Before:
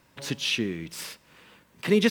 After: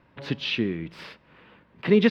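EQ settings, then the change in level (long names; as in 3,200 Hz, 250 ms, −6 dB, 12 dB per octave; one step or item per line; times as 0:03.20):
dynamic equaliser 4,600 Hz, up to +6 dB, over −43 dBFS, Q 1.3
high-frequency loss of the air 390 metres
+3.5 dB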